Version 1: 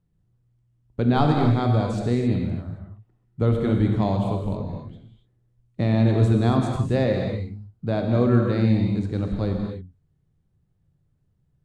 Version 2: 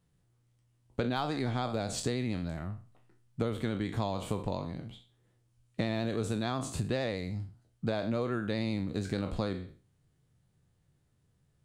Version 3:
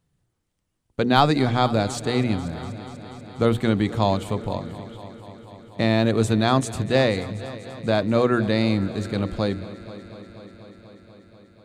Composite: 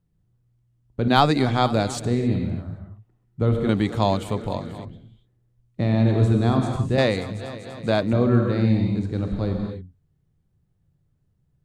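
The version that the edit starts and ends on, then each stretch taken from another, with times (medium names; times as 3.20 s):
1
1.08–2.05 s: from 3
3.69–4.85 s: from 3
6.98–8.13 s: from 3
not used: 2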